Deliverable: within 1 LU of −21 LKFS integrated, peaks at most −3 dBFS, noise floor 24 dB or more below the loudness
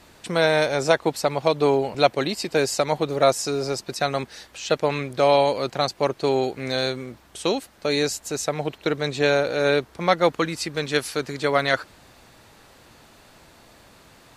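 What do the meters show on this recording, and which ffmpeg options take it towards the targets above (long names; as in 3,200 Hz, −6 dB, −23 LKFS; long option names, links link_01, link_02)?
integrated loudness −23.0 LKFS; sample peak −3.5 dBFS; target loudness −21.0 LKFS
→ -af "volume=2dB,alimiter=limit=-3dB:level=0:latency=1"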